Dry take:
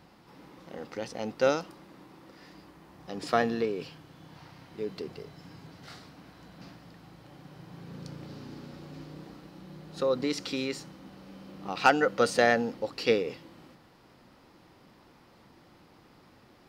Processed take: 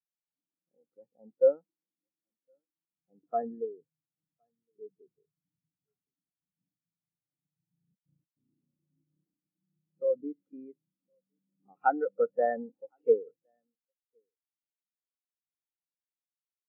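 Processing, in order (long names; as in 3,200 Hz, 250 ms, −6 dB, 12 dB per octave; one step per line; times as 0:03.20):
low-pass filter 1,800 Hz 12 dB per octave
0:07.95–0:08.37: noise gate with hold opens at −33 dBFS
on a send: single-tap delay 1,063 ms −18.5 dB
on the sum: every bin expanded away from the loudest bin 2.5 to 1
level −3.5 dB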